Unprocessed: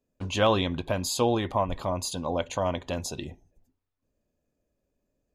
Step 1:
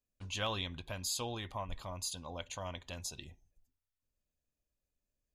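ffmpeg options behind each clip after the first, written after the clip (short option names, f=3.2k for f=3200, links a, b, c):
-af "equalizer=f=370:w=0.31:g=-13.5,volume=-5dB"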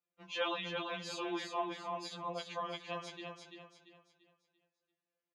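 -af "highpass=290,lowpass=2.6k,aecho=1:1:341|682|1023|1364|1705:0.562|0.208|0.077|0.0285|0.0105,afftfilt=real='re*2.83*eq(mod(b,8),0)':imag='im*2.83*eq(mod(b,8),0)':win_size=2048:overlap=0.75,volume=6.5dB"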